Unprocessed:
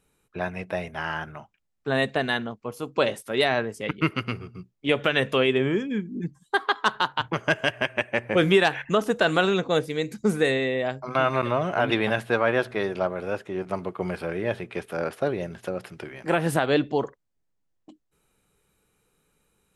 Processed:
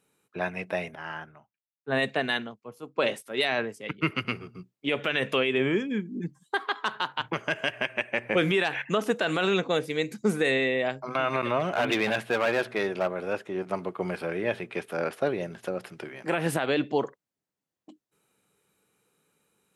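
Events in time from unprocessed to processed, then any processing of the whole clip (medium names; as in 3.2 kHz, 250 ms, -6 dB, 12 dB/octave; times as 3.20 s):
0.95–4.25 s: three bands expanded up and down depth 100%
11.60–13.33 s: hard clipper -19 dBFS
whole clip: high-pass 150 Hz 12 dB/octave; dynamic bell 2.4 kHz, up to +5 dB, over -41 dBFS, Q 1.8; peak limiter -13 dBFS; trim -1 dB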